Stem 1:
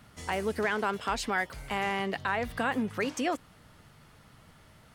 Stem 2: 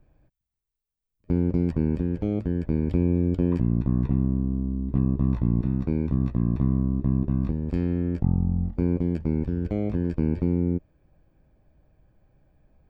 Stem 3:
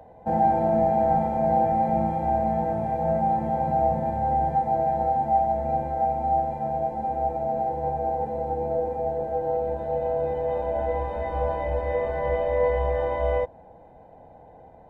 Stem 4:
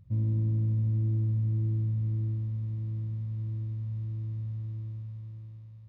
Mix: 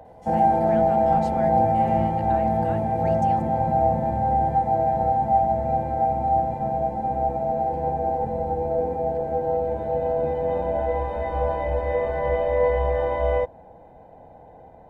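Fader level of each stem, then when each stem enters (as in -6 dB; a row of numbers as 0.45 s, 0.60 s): -13.5 dB, -14.5 dB, +2.0 dB, -6.5 dB; 0.05 s, 0.00 s, 0.00 s, 1.45 s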